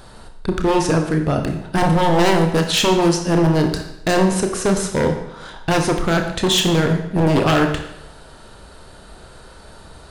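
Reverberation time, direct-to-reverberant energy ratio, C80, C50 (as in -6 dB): 0.80 s, 4.0 dB, 9.5 dB, 7.5 dB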